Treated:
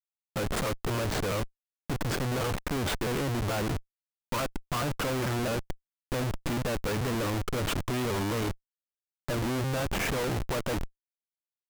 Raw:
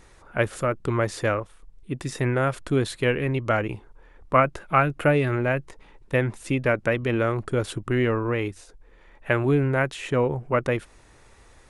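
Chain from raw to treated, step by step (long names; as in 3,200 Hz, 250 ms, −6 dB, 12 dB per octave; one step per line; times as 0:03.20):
pitch shifter gated in a rhythm −2 semitones, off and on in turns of 219 ms
downward compressor 6 to 1, threshold −27 dBFS, peak gain reduction 13.5 dB
noise gate −42 dBFS, range −7 dB
dynamic equaliser 880 Hz, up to +6 dB, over −46 dBFS, Q 1
comparator with hysteresis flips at −37.5 dBFS
level +2 dB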